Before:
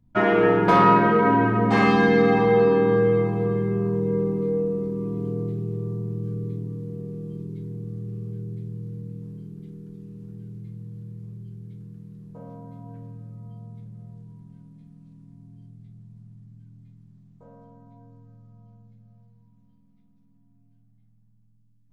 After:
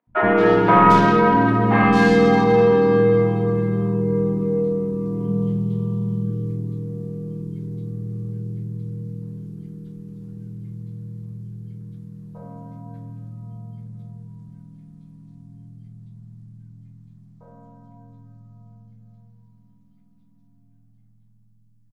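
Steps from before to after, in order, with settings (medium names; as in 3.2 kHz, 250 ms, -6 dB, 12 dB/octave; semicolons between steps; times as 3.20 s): tracing distortion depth 0.052 ms; 5.20–6.23 s: graphic EQ with 31 bands 200 Hz +7 dB, 315 Hz -8 dB, 1 kHz +7 dB, 3.15 kHz +12 dB; three bands offset in time mids, lows, highs 70/220 ms, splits 420/2700 Hz; trim +4 dB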